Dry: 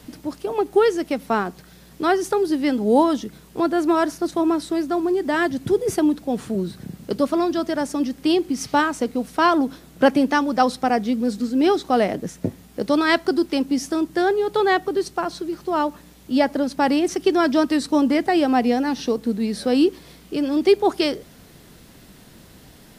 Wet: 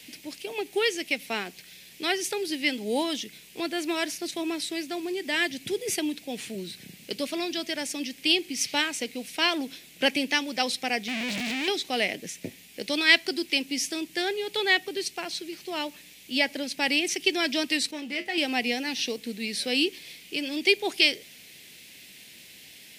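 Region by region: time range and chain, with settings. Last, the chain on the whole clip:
11.08–11.68 infinite clipping + LPF 1600 Hz 6 dB/oct + Doppler distortion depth 0.11 ms
17.91–18.38 high shelf 3400 Hz -5.5 dB + sample leveller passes 1 + resonator 70 Hz, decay 0.21 s, harmonics odd, mix 80%
whole clip: HPF 270 Hz 6 dB/oct; resonant high shelf 1700 Hz +11 dB, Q 3; gain -8.5 dB

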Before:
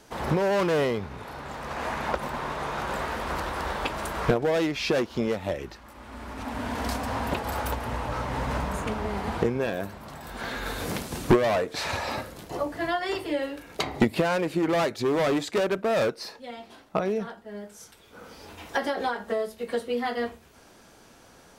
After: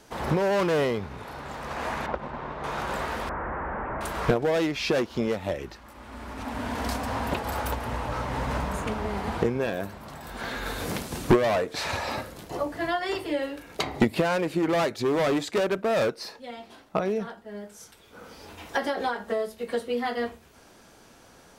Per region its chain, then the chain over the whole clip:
2.06–2.64 G.711 law mismatch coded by A + tape spacing loss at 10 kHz 26 dB
3.29–4.01 infinite clipping + steep low-pass 1800 Hz
whole clip: dry

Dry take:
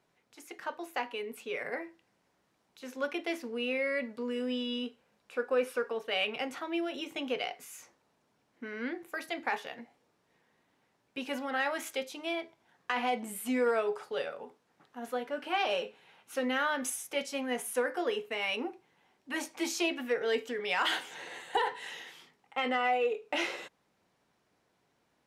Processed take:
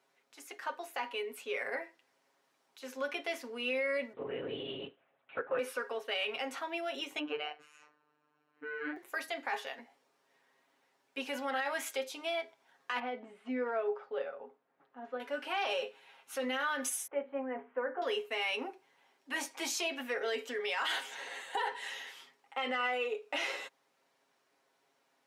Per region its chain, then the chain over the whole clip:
4.13–5.59 LPF 2700 Hz + LPC vocoder at 8 kHz whisper
7.19–8.97 LPF 2400 Hz + comb 6.8 ms, depth 84% + robotiser 150 Hz
12.99–15.2 tape spacing loss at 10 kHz 42 dB + notch 990 Hz, Q 28
17.07–18.02 Gaussian blur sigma 5.4 samples + notches 50/100/150/200/250/300/350/400/450 Hz
whole clip: Bessel high-pass 430 Hz, order 2; comb 7.4 ms, depth 57%; limiter -25 dBFS

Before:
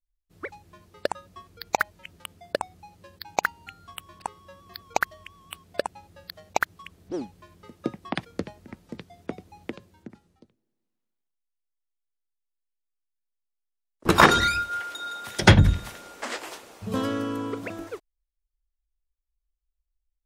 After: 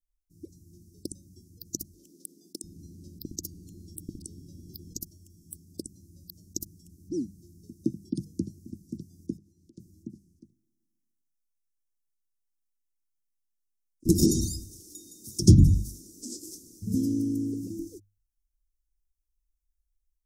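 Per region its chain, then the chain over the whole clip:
1.93–4.97 tone controls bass +1 dB, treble -14 dB + bands offset in time highs, lows 0.7 s, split 340 Hz + spectral compressor 2:1
9.37–9.77 LPF 2400 Hz 6 dB/oct + compressor 3:1, threshold -49 dBFS + low shelf 370 Hz -11.5 dB
whole clip: Chebyshev band-stop 330–5500 Hz, order 4; notches 50/100/150/200 Hz; AGC gain up to 3.5 dB

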